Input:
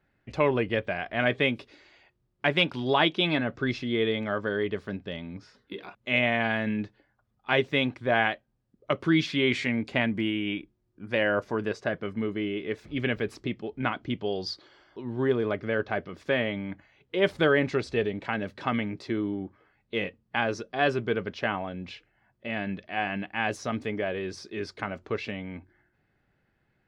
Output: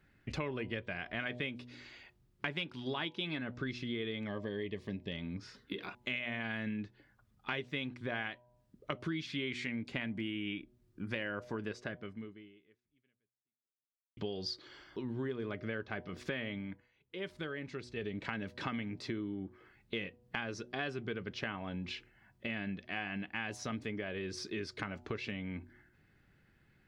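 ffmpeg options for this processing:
-filter_complex "[0:a]asettb=1/sr,asplit=3[s0][s1][s2];[s0]atrim=end=4.274[s3];[s1]atrim=start=4.27:end=5.12,asetpts=PTS-STARTPTS,afade=t=in:d=0.004:c=qsin,afade=t=out:st=0.846:d=0.004:c=qsin,asuperstop=centerf=1400:order=4:qfactor=2.3[s4];[s2]atrim=start=5.116[s5];[s3][s4]acrossfade=d=0.004:c1=hsin:c2=qsin[s6];[s6][s5]acrossfade=d=0.004:c1=qsin:c2=hsin,asplit=4[s7][s8][s9][s10];[s7]atrim=end=14.17,asetpts=PTS-STARTPTS,afade=t=out:st=11.78:d=2.39:c=exp[s11];[s8]atrim=start=14.17:end=16.8,asetpts=PTS-STARTPTS,afade=t=in:d=0.004:c=hsin,afade=t=out:st=2.37:d=0.26:silence=0.16788[s12];[s9]atrim=start=16.8:end=17.95,asetpts=PTS-STARTPTS,volume=0.168[s13];[s10]atrim=start=17.95,asetpts=PTS-STARTPTS,afade=t=in:d=0.26:silence=0.16788[s14];[s11][s12][s13][s14]concat=n=4:v=0:a=1,equalizer=f=680:t=o:w=1.4:g=-8,bandreject=f=122.1:t=h:w=4,bandreject=f=244.2:t=h:w=4,bandreject=f=366.3:t=h:w=4,bandreject=f=488.4:t=h:w=4,bandreject=f=610.5:t=h:w=4,bandreject=f=732.6:t=h:w=4,bandreject=f=854.7:t=h:w=4,bandreject=f=976.8:t=h:w=4,acompressor=threshold=0.00794:ratio=5,volume=1.78"

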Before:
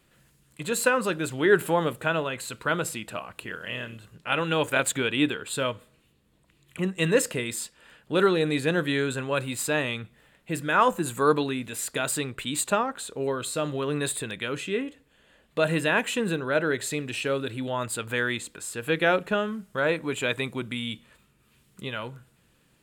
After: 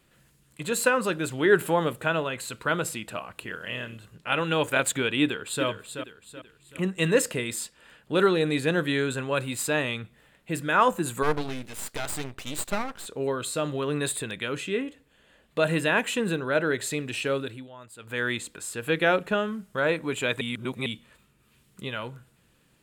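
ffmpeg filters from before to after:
-filter_complex "[0:a]asplit=2[s0][s1];[s1]afade=t=in:st=5.22:d=0.01,afade=t=out:st=5.65:d=0.01,aecho=0:1:380|760|1140|1520|1900:0.398107|0.159243|0.0636971|0.0254789|0.0101915[s2];[s0][s2]amix=inputs=2:normalize=0,asplit=3[s3][s4][s5];[s3]afade=t=out:st=11.22:d=0.02[s6];[s4]aeval=exprs='max(val(0),0)':c=same,afade=t=in:st=11.22:d=0.02,afade=t=out:st=13.05:d=0.02[s7];[s5]afade=t=in:st=13.05:d=0.02[s8];[s6][s7][s8]amix=inputs=3:normalize=0,asplit=5[s9][s10][s11][s12][s13];[s9]atrim=end=17.68,asetpts=PTS-STARTPTS,afade=t=out:st=17.37:d=0.31:silence=0.149624[s14];[s10]atrim=start=17.68:end=17.97,asetpts=PTS-STARTPTS,volume=0.15[s15];[s11]atrim=start=17.97:end=20.412,asetpts=PTS-STARTPTS,afade=t=in:d=0.31:silence=0.149624[s16];[s12]atrim=start=20.408:end=20.862,asetpts=PTS-STARTPTS,areverse[s17];[s13]atrim=start=20.858[s18];[s14][s15][s16]concat=n=3:v=0:a=1[s19];[s19][s17]acrossfade=d=0.004:c1=hsin:c2=hsin[s20];[s20][s18]acrossfade=d=0.004:c1=hsin:c2=hsin"

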